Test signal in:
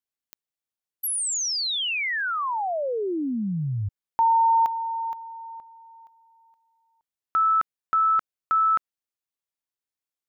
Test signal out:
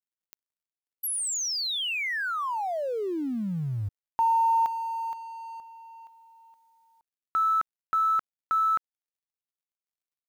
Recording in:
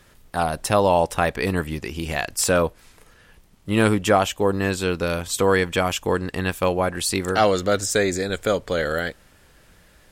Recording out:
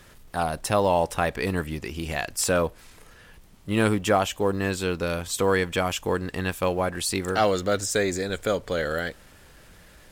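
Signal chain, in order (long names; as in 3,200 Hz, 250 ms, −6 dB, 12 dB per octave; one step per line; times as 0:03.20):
mu-law and A-law mismatch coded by mu
level −4 dB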